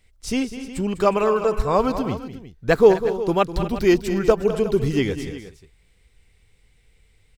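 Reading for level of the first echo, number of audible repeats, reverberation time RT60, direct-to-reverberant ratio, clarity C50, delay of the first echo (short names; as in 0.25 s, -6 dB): -12.0 dB, 3, none, none, none, 0.201 s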